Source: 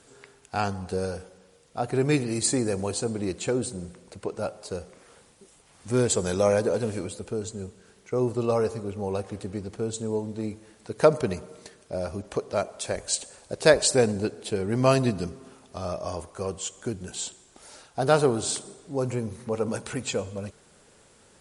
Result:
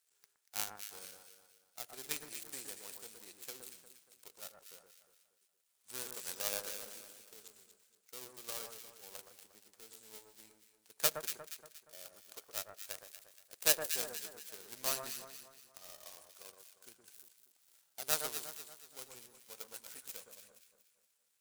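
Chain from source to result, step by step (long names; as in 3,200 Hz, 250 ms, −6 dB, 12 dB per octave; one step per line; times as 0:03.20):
gap after every zero crossing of 0.13 ms
first difference
power curve on the samples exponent 1.4
on a send: delay that swaps between a low-pass and a high-pass 118 ms, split 1,600 Hz, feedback 63%, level −5 dB
on the sum: level +5 dB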